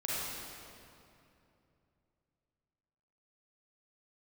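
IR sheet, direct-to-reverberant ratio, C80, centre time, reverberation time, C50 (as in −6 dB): −8.0 dB, −2.5 dB, 173 ms, 2.8 s, −5.5 dB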